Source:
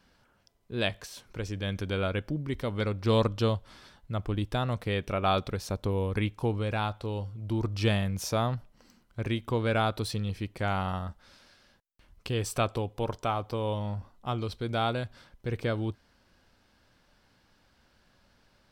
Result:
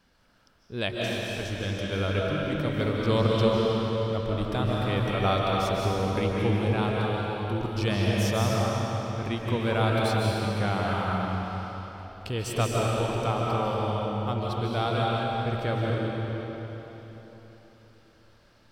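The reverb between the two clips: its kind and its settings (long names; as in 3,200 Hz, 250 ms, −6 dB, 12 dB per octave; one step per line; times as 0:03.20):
comb and all-pass reverb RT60 3.9 s, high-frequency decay 0.85×, pre-delay 110 ms, DRR −4 dB
level −1 dB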